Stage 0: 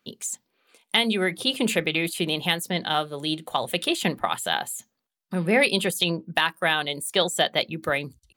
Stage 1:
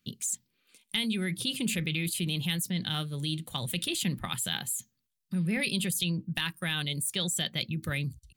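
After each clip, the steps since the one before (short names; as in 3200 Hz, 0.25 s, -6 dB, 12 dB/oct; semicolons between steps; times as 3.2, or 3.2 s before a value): EQ curve 140 Hz 0 dB, 650 Hz -27 dB, 2400 Hz -12 dB, 8400 Hz -7 dB; in parallel at -1.5 dB: negative-ratio compressor -39 dBFS, ratio -1; on the sum: bell 560 Hz +3 dB 0.28 oct; gain +1 dB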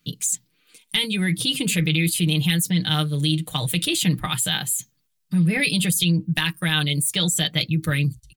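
comb 6.5 ms, depth 74%; gain +7 dB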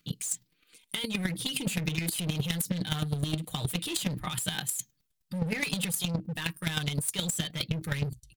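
in parallel at +0.5 dB: limiter -17 dBFS, peak gain reduction 10.5 dB; on the sum: overloaded stage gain 17 dB; chopper 9.6 Hz, depth 65%, duty 10%; gain -4.5 dB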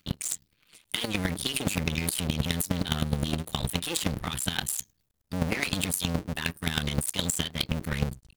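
cycle switcher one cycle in 2, muted; gain +5 dB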